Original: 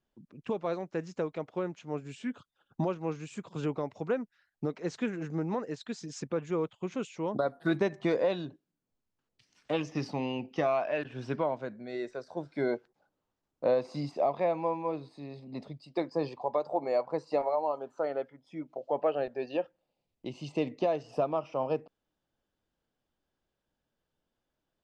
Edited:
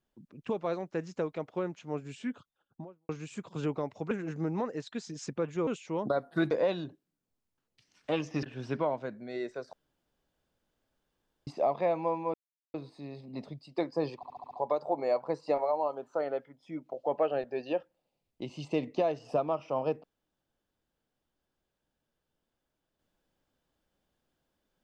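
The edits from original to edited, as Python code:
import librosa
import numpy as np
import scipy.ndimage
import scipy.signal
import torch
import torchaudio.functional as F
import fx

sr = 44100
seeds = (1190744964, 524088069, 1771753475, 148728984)

y = fx.studio_fade_out(x, sr, start_s=2.22, length_s=0.87)
y = fx.edit(y, sr, fx.cut(start_s=4.11, length_s=0.94),
    fx.cut(start_s=6.61, length_s=0.35),
    fx.cut(start_s=7.8, length_s=0.32),
    fx.cut(start_s=10.04, length_s=0.98),
    fx.room_tone_fill(start_s=12.32, length_s=1.74),
    fx.insert_silence(at_s=14.93, length_s=0.4),
    fx.stutter(start_s=16.35, slice_s=0.07, count=6), tone=tone)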